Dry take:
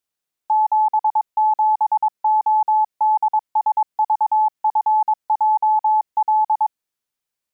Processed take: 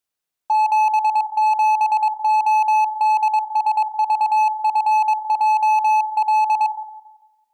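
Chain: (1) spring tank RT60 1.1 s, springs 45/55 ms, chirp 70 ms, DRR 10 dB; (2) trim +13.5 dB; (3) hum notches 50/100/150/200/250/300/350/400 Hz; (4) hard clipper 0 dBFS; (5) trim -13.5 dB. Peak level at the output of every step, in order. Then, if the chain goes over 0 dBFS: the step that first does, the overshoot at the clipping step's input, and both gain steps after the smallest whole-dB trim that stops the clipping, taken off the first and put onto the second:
-9.5 dBFS, +4.0 dBFS, +4.0 dBFS, 0.0 dBFS, -13.5 dBFS; step 2, 4.0 dB; step 2 +9.5 dB, step 5 -9.5 dB

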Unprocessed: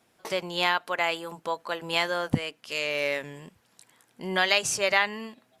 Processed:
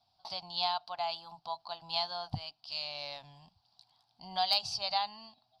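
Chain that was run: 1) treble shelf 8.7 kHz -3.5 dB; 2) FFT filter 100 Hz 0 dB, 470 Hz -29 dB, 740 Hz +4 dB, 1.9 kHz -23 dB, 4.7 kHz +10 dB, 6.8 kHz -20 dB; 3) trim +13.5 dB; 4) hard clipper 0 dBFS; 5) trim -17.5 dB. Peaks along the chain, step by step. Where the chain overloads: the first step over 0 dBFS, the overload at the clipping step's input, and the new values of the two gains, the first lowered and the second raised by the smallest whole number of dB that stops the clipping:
-6.5 dBFS, -9.5 dBFS, +4.0 dBFS, 0.0 dBFS, -17.5 dBFS; step 3, 4.0 dB; step 3 +9.5 dB, step 5 -13.5 dB

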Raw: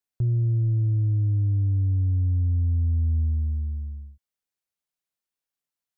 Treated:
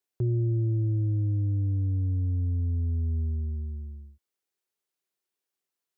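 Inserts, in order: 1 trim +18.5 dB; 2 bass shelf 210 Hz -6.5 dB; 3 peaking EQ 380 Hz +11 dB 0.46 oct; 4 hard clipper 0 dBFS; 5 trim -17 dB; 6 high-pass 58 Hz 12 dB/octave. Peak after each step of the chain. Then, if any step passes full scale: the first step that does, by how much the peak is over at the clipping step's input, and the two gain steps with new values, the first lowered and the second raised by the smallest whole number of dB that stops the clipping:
-1.0 dBFS, -5.5 dBFS, -3.5 dBFS, -3.5 dBFS, -20.5 dBFS, -19.0 dBFS; nothing clips

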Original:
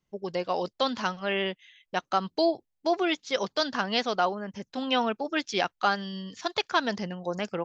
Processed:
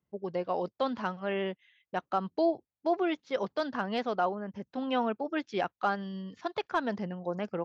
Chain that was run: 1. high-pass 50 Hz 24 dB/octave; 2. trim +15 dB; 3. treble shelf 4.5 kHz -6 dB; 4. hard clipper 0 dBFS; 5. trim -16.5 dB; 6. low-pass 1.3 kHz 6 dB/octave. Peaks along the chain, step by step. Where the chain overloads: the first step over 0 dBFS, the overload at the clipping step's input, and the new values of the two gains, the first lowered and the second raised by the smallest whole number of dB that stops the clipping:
-11.0 dBFS, +4.0 dBFS, +3.5 dBFS, 0.0 dBFS, -16.5 dBFS, -17.0 dBFS; step 2, 3.5 dB; step 2 +11 dB, step 5 -12.5 dB

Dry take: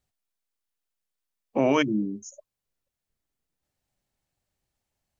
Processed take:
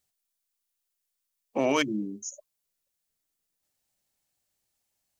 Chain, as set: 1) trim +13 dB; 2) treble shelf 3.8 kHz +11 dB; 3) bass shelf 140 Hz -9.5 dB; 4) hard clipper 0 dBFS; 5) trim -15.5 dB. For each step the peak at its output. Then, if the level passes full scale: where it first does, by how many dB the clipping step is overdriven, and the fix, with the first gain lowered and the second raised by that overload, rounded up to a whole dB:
+3.0 dBFS, +4.5 dBFS, +4.5 dBFS, 0.0 dBFS, -15.5 dBFS; step 1, 4.5 dB; step 1 +8 dB, step 5 -10.5 dB

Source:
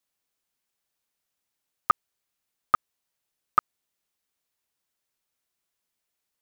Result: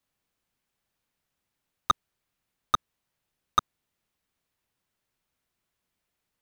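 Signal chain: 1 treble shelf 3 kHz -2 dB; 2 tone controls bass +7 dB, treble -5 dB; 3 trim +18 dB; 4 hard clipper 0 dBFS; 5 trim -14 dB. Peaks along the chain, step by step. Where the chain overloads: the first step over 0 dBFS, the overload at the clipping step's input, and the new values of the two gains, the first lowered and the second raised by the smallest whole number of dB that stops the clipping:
-9.5 dBFS, -8.5 dBFS, +9.5 dBFS, 0.0 dBFS, -14.0 dBFS; step 3, 9.5 dB; step 3 +8 dB, step 5 -4 dB

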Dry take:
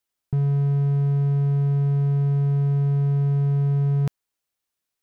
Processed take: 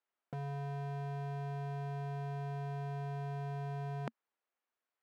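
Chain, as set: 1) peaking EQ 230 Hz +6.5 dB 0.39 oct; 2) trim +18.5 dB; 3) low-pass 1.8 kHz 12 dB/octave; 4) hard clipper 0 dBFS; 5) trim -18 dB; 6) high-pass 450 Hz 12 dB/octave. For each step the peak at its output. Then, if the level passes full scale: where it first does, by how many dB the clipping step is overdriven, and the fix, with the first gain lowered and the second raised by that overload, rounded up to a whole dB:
-14.5 dBFS, +4.0 dBFS, +4.0 dBFS, 0.0 dBFS, -18.0 dBFS, -21.5 dBFS; step 2, 4.0 dB; step 2 +14.5 dB, step 5 -14 dB

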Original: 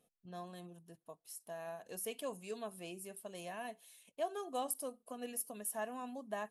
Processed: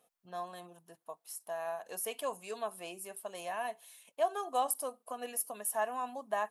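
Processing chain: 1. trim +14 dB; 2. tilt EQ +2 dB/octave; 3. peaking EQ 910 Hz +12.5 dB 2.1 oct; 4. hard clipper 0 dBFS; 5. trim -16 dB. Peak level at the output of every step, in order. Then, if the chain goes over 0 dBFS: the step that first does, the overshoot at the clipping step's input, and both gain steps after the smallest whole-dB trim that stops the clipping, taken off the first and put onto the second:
-10.0 dBFS, -3.0 dBFS, -3.0 dBFS, -3.0 dBFS, -19.0 dBFS; nothing clips

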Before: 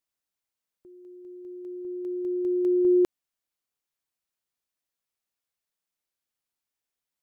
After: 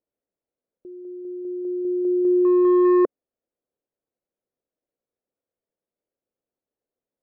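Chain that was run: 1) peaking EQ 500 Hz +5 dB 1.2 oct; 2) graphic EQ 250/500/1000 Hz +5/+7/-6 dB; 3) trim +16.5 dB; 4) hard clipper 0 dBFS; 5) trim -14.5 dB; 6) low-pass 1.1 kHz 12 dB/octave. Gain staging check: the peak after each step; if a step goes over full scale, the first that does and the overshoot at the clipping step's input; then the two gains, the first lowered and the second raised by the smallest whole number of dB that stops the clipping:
-13.0 dBFS, -7.0 dBFS, +9.5 dBFS, 0.0 dBFS, -14.5 dBFS, -14.0 dBFS; step 3, 9.5 dB; step 3 +6.5 dB, step 5 -4.5 dB

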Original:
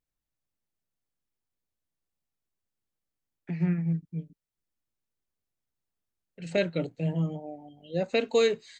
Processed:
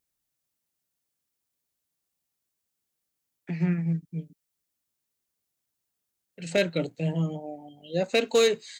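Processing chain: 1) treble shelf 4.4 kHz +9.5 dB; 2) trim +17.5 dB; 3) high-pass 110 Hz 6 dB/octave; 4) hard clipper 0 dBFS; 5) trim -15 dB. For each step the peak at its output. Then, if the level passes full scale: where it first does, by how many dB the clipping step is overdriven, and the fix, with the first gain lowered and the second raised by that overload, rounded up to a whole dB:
-12.0 dBFS, +5.5 dBFS, +6.0 dBFS, 0.0 dBFS, -15.0 dBFS; step 2, 6.0 dB; step 2 +11.5 dB, step 5 -9 dB

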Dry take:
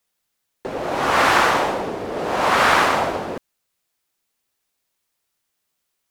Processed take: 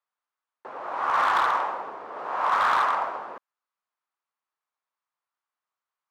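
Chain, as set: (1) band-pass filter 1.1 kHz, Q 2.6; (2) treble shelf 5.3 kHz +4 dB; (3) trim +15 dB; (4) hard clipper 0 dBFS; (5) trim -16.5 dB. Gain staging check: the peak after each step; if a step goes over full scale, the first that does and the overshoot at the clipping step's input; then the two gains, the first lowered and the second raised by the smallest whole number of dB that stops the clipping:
-7.0 dBFS, -7.0 dBFS, +8.0 dBFS, 0.0 dBFS, -16.5 dBFS; step 3, 8.0 dB; step 3 +7 dB, step 5 -8.5 dB

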